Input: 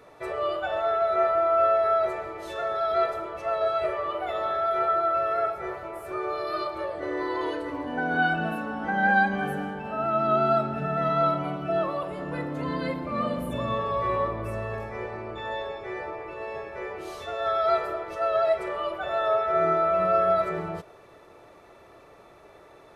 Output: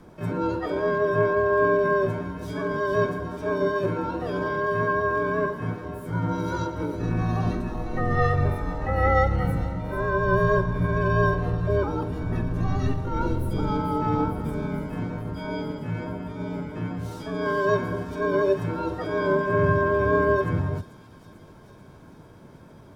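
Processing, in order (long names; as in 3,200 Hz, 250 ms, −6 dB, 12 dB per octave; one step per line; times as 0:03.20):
graphic EQ with 15 bands 160 Hz +11 dB, 400 Hz +7 dB, 2,500 Hz −10 dB
frequency shifter −260 Hz
delay with a high-pass on its return 444 ms, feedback 72%, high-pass 4,100 Hz, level −7.5 dB
pitch-shifted copies added +7 semitones −3 dB
level −1.5 dB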